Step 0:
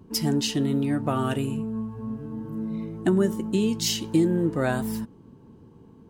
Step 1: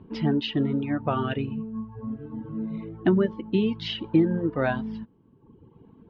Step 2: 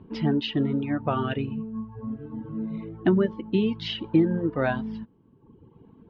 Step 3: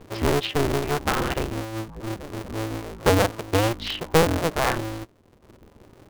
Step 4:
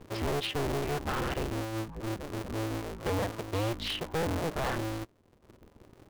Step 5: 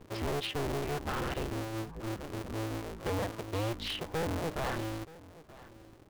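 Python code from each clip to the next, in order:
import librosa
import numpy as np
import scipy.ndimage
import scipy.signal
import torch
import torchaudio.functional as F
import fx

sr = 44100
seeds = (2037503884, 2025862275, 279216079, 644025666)

y1 = scipy.signal.sosfilt(scipy.signal.butter(6, 3600.0, 'lowpass', fs=sr, output='sos'), x)
y1 = fx.dereverb_blind(y1, sr, rt60_s=1.2)
y1 = y1 * 10.0 ** (1.5 / 20.0)
y2 = y1
y3 = fx.cycle_switch(y2, sr, every=2, mode='inverted')
y3 = y3 * 10.0 ** (2.0 / 20.0)
y4 = fx.leveller(y3, sr, passes=1)
y4 = 10.0 ** (-22.5 / 20.0) * np.tanh(y4 / 10.0 ** (-22.5 / 20.0))
y4 = y4 * 10.0 ** (-5.5 / 20.0)
y5 = y4 + 10.0 ** (-19.0 / 20.0) * np.pad(y4, (int(926 * sr / 1000.0), 0))[:len(y4)]
y5 = y5 * 10.0 ** (-2.5 / 20.0)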